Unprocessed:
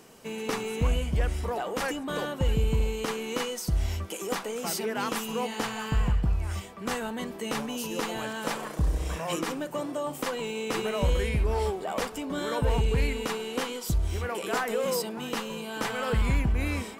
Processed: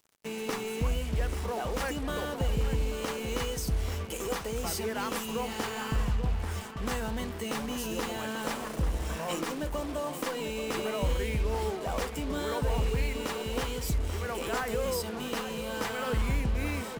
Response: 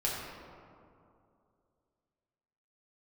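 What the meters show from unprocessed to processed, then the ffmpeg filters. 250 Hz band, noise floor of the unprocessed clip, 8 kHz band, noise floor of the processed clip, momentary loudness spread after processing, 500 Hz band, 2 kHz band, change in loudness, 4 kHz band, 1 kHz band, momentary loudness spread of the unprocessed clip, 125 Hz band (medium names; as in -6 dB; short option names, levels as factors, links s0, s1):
-2.0 dB, -41 dBFS, -1.5 dB, -38 dBFS, 4 LU, -2.5 dB, -2.5 dB, -2.5 dB, -2.0 dB, -2.5 dB, 6 LU, -3.0 dB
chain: -filter_complex "[0:a]asplit=2[s0][s1];[s1]acompressor=threshold=0.0224:ratio=6,volume=0.891[s2];[s0][s2]amix=inputs=2:normalize=0,acrusher=bits=5:mix=0:aa=0.5,asplit=2[s3][s4];[s4]adelay=838,lowpass=f=2000:p=1,volume=0.376,asplit=2[s5][s6];[s6]adelay=838,lowpass=f=2000:p=1,volume=0.38,asplit=2[s7][s8];[s8]adelay=838,lowpass=f=2000:p=1,volume=0.38,asplit=2[s9][s10];[s10]adelay=838,lowpass=f=2000:p=1,volume=0.38[s11];[s3][s5][s7][s9][s11]amix=inputs=5:normalize=0,volume=0.501"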